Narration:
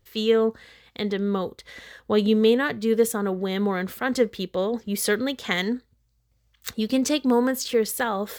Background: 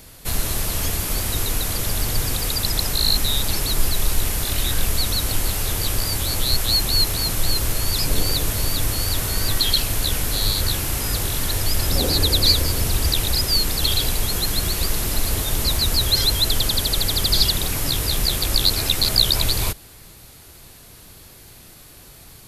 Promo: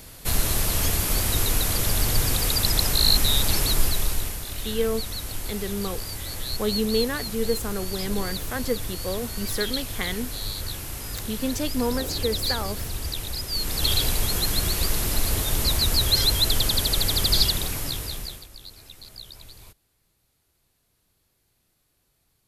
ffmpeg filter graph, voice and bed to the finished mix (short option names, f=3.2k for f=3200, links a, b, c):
-filter_complex "[0:a]adelay=4500,volume=-5.5dB[a];[1:a]volume=8.5dB,afade=t=out:st=3.64:d=0.77:silence=0.298538,afade=t=in:st=13.5:d=0.41:silence=0.375837,afade=t=out:st=17.33:d=1.15:silence=0.0668344[b];[a][b]amix=inputs=2:normalize=0"